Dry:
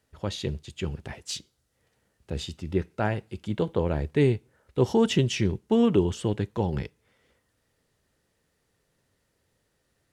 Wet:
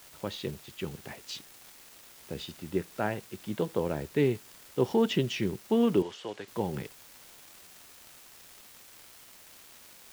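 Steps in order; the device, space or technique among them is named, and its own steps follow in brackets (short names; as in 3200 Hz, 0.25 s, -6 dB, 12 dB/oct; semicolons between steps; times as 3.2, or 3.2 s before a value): 78 rpm shellac record (BPF 160–4700 Hz; crackle 400/s -38 dBFS; white noise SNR 21 dB); 6.02–6.48 three-band isolator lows -17 dB, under 450 Hz, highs -23 dB, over 7800 Hz; gain -3 dB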